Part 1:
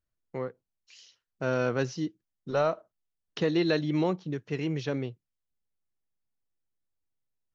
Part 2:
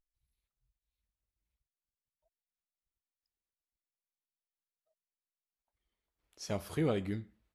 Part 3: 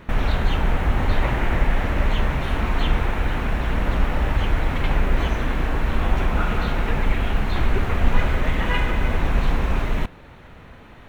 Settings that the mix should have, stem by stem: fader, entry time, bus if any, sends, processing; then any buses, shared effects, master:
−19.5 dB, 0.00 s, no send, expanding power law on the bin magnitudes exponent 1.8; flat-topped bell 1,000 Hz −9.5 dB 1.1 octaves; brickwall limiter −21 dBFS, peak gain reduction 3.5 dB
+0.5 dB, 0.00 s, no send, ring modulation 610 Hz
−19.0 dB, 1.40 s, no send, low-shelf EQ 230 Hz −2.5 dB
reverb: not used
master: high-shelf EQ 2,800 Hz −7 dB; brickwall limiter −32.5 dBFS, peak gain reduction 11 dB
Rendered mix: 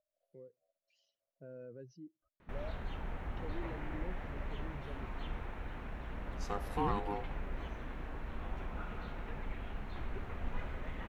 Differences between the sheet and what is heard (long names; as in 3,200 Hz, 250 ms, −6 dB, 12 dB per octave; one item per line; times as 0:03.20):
stem 3: entry 1.40 s → 2.40 s
master: missing brickwall limiter −32.5 dBFS, peak gain reduction 11 dB